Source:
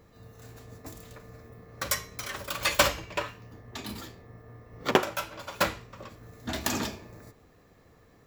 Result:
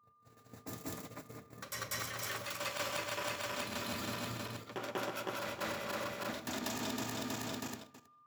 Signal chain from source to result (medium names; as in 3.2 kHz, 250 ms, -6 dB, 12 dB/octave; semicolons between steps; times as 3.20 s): backward echo that repeats 160 ms, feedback 76%, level -7 dB; gate -44 dBFS, range -38 dB; high-pass 100 Hz 24 dB/octave; reverse; compression 8:1, threshold -42 dBFS, peak gain reduction 26.5 dB; reverse; whistle 1.2 kHz -67 dBFS; reverse echo 192 ms -3 dB; on a send at -16.5 dB: reverberation RT60 0.95 s, pre-delay 3 ms; on the sum: trim +4 dB